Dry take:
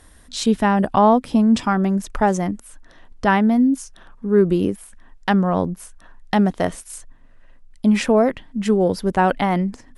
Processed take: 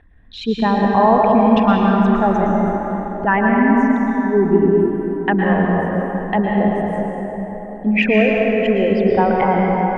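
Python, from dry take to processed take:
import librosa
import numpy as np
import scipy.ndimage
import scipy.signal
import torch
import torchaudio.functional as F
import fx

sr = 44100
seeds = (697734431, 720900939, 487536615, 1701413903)

y = fx.envelope_sharpen(x, sr, power=2.0)
y = fx.lowpass_res(y, sr, hz=2500.0, q=4.0)
y = fx.rev_plate(y, sr, seeds[0], rt60_s=4.4, hf_ratio=0.5, predelay_ms=100, drr_db=-2.5)
y = fx.attack_slew(y, sr, db_per_s=440.0)
y = y * 10.0 ** (-2.0 / 20.0)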